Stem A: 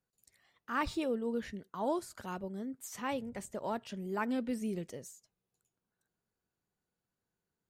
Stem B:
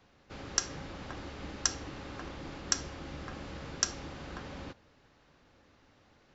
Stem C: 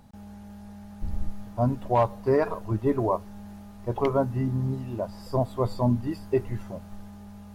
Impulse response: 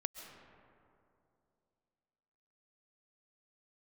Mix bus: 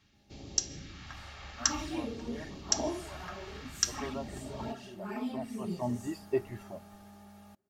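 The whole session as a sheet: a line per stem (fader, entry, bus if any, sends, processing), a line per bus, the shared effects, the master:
+0.5 dB, 0.95 s, send -11.5 dB, phase scrambler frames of 0.2 s; notch 540 Hz, Q 12; envelope flanger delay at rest 11.2 ms, full sweep at -31.5 dBFS
-0.5 dB, 0.00 s, send -10 dB, phaser stages 2, 0.52 Hz, lowest notch 270–1400 Hz
3.13 s -21 dB -> 3.41 s -12.5 dB -> 5.63 s -12.5 dB -> 5.95 s -1.5 dB, 0.00 s, send -23.5 dB, low shelf 180 Hz -12 dB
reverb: on, RT60 2.7 s, pre-delay 95 ms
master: bell 180 Hz -3 dB 2.1 oct; notch comb 500 Hz

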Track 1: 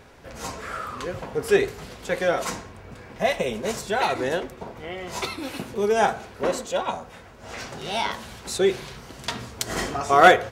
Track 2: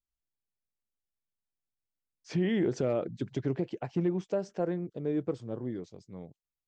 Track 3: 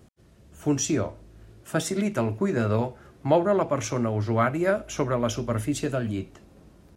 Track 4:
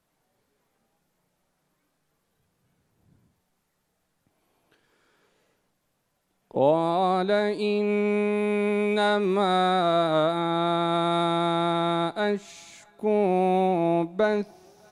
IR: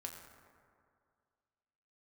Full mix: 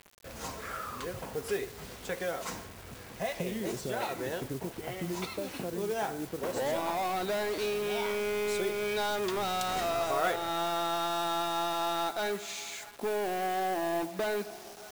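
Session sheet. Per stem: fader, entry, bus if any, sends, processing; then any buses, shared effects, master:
-6.0 dB, 0.00 s, bus A, send -23 dB, dry
-3.0 dB, 1.05 s, bus A, no send, dry
off
-12.5 dB, 0.00 s, bus A, send -12 dB, overdrive pedal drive 25 dB, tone 7900 Hz, clips at -9 dBFS
bus A: 0.0 dB, modulation noise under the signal 16 dB; compressor 2.5:1, threshold -34 dBFS, peak gain reduction 13.5 dB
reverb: on, RT60 2.2 s, pre-delay 6 ms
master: requantised 8-bit, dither none

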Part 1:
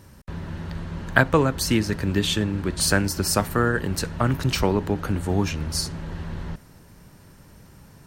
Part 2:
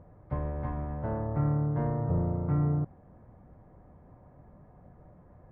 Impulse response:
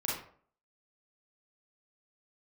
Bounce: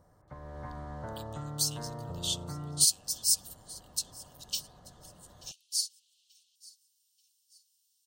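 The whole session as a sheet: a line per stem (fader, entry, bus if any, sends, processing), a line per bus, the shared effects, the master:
-4.5 dB, 0.00 s, no send, echo send -22.5 dB, steep high-pass 2900 Hz 72 dB/oct; differentiator; upward expander 1.5:1, over -48 dBFS
-3.5 dB, 0.00 s, no send, no echo send, LPF 1900 Hz 24 dB/oct; tilt shelf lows -8 dB, about 1100 Hz; compressor, threshold -42 dBFS, peak gain reduction 11 dB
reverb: off
echo: feedback echo 0.884 s, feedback 37%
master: bell 12000 Hz -15 dB 0.34 oct; AGC gain up to 8 dB

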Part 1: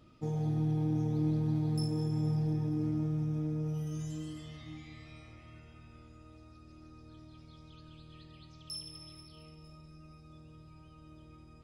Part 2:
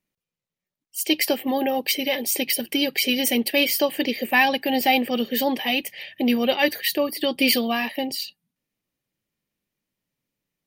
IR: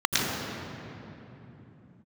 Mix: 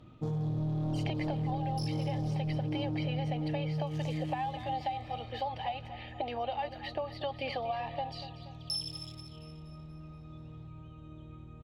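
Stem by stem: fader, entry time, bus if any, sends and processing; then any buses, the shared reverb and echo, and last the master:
-6.0 dB, 0.00 s, no send, echo send -15.5 dB, Wiener smoothing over 9 samples; notches 50/100/150 Hz; sine folder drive 6 dB, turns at -22.5 dBFS
-1.0 dB, 0.00 s, no send, echo send -14.5 dB, ladder band-pass 840 Hz, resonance 65%; three-band squash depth 100%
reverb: off
echo: feedback echo 0.239 s, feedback 49%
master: graphic EQ 125/2000/4000 Hz +6/-4/+10 dB; compressor, threshold -30 dBFS, peak gain reduction 7.5 dB

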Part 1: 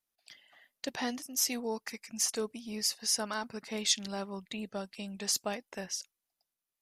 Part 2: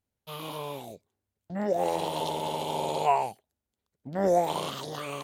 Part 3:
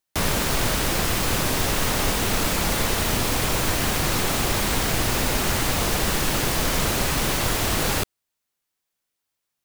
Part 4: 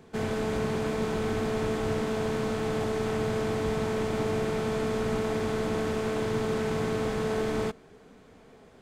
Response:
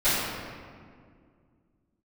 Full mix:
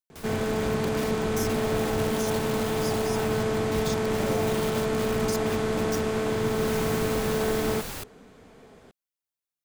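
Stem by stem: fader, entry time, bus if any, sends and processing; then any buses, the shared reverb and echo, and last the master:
-3.5 dB, 0.00 s, bus A, no send, dry
-4.0 dB, 0.00 s, bus A, no send, HPF 820 Hz 6 dB/oct
-14.0 dB, 0.00 s, no bus, no send, auto duck -23 dB, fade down 0.60 s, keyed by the first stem
+2.5 dB, 0.10 s, no bus, no send, dry
bus A: 0.0 dB, requantised 6-bit, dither none; limiter -27.5 dBFS, peak gain reduction 11.5 dB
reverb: off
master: high shelf 9400 Hz +4.5 dB

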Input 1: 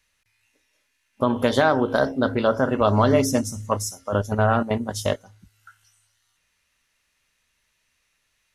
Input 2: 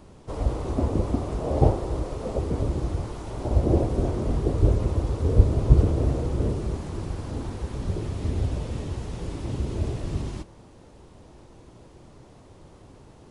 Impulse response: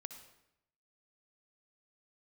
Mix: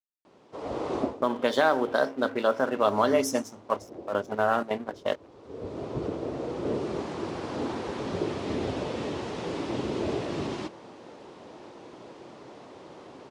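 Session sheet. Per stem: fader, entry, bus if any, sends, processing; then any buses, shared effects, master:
-3.0 dB, 0.00 s, no send, low-pass opened by the level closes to 540 Hz, open at -15 dBFS; crossover distortion -40.5 dBFS
-4.0 dB, 0.25 s, no send, AGC gain up to 11.5 dB; LPF 4800 Hz 12 dB/oct; auto duck -20 dB, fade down 0.20 s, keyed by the first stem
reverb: off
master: HPF 290 Hz 12 dB/oct

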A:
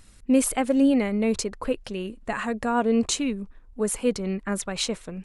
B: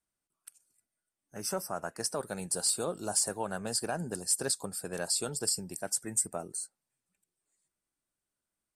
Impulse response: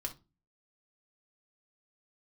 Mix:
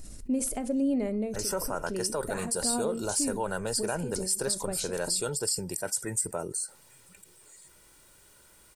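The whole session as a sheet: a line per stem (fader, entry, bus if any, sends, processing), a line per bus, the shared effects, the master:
-12.0 dB, 0.00 s, send -4.5 dB, band shelf 1900 Hz -10.5 dB 2.4 oct; ending taper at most 110 dB/s
-3.5 dB, 0.00 s, no send, comb 2.1 ms, depth 47%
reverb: on, RT60 0.30 s, pre-delay 3 ms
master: fast leveller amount 50%

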